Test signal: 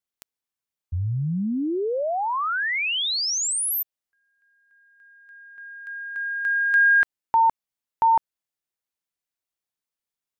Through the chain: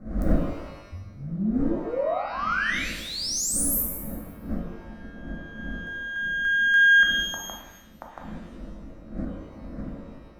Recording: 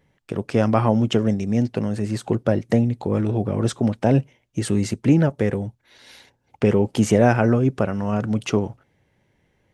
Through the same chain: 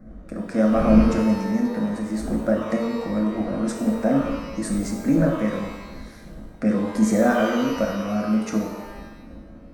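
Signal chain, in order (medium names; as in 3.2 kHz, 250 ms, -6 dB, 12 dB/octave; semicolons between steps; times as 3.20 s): wind noise 200 Hz -31 dBFS; static phaser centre 610 Hz, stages 8; pitch-shifted reverb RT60 1 s, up +12 st, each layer -8 dB, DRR 1 dB; trim -2.5 dB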